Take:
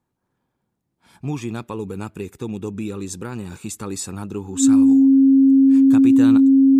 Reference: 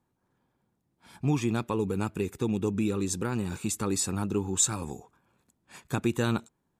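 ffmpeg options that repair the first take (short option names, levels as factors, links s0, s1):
-af "bandreject=f=270:w=30"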